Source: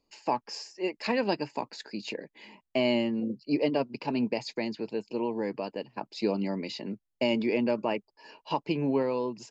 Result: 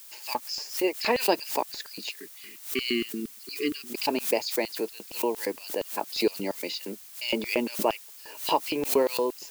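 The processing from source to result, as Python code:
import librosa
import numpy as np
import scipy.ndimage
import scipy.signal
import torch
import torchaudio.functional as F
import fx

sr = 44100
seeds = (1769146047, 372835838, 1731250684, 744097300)

y = fx.filter_lfo_highpass(x, sr, shape='square', hz=4.3, low_hz=390.0, high_hz=3700.0, q=1.1)
y = fx.spec_erase(y, sr, start_s=2.1, length_s=1.78, low_hz=440.0, high_hz=1100.0)
y = fx.dmg_noise_colour(y, sr, seeds[0], colour='blue', level_db=-52.0)
y = fx.pre_swell(y, sr, db_per_s=140.0)
y = y * librosa.db_to_amplitude(4.5)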